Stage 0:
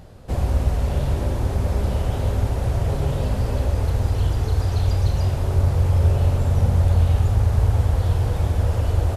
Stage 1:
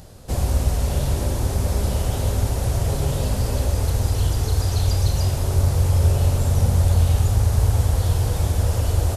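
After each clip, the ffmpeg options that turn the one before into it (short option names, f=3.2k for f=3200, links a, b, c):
-af "bass=f=250:g=0,treble=f=4k:g=12"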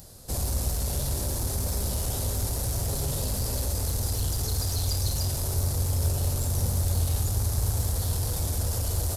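-filter_complex "[0:a]asplit=2[a][b];[b]aeval=exprs='0.0891*(abs(mod(val(0)/0.0891+3,4)-2)-1)':c=same,volume=-10dB[c];[a][c]amix=inputs=2:normalize=0,aexciter=amount=3.4:drive=3.4:freq=4k,volume=-9dB"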